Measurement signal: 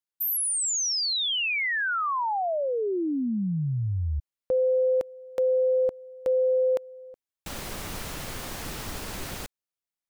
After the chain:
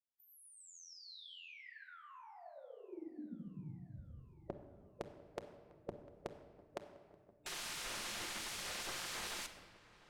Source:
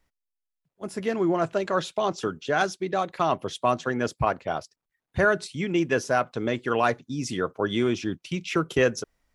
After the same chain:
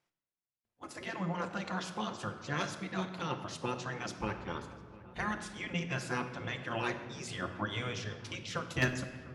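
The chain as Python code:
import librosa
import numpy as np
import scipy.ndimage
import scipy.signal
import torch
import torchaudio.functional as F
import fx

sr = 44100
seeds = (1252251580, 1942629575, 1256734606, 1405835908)

p1 = fx.highpass(x, sr, hz=61.0, slope=6)
p2 = fx.hum_notches(p1, sr, base_hz=60, count=5)
p3 = fx.spec_gate(p2, sr, threshold_db=-10, keep='weak')
p4 = scipy.signal.sosfilt(scipy.signal.bessel(2, 8200.0, 'lowpass', norm='mag', fs=sr, output='sos'), p3)
p5 = fx.low_shelf(p4, sr, hz=210.0, db=7.0)
p6 = fx.level_steps(p5, sr, step_db=24)
p7 = p5 + (p6 * librosa.db_to_amplitude(0.0))
p8 = np.clip(p7, -10.0 ** (-14.0 / 20.0), 10.0 ** (-14.0 / 20.0))
p9 = fx.echo_filtered(p8, sr, ms=700, feedback_pct=79, hz=2500.0, wet_db=-20)
p10 = fx.room_shoebox(p9, sr, seeds[0], volume_m3=1700.0, walls='mixed', distance_m=0.87)
y = p10 * librosa.db_to_amplitude(-6.5)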